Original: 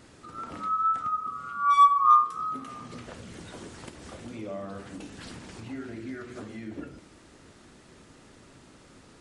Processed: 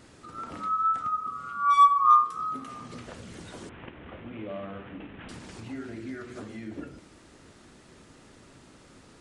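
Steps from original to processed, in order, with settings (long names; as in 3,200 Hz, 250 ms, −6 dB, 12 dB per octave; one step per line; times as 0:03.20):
0:03.69–0:05.29: variable-slope delta modulation 16 kbit/s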